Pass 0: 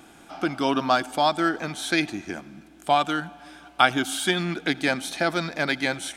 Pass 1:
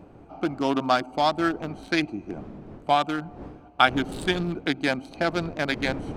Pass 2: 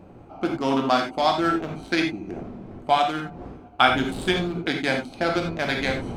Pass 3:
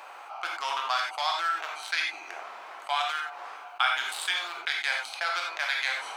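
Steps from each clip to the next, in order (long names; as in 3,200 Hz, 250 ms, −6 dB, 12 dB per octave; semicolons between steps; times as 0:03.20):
adaptive Wiener filter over 25 samples; wind on the microphone 350 Hz −41 dBFS
reverb whose tail is shaped and stops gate 110 ms flat, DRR 1.5 dB
high-pass filter 960 Hz 24 dB per octave; envelope flattener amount 50%; level −6.5 dB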